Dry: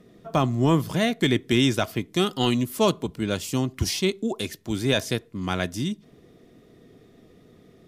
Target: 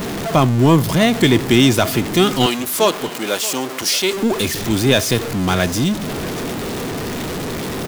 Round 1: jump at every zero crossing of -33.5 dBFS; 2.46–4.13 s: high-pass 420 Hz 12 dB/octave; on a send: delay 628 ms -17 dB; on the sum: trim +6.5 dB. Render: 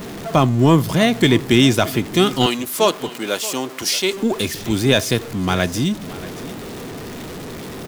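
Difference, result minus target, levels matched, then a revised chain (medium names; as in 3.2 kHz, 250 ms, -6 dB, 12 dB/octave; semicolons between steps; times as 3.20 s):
jump at every zero crossing: distortion -7 dB
jump at every zero crossing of -25.5 dBFS; 2.46–4.13 s: high-pass 420 Hz 12 dB/octave; on a send: delay 628 ms -17 dB; on the sum: trim +6.5 dB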